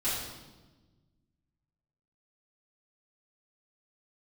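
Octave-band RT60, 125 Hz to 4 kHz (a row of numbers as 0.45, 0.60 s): 2.2, 1.9, 1.4, 1.1, 0.95, 1.0 s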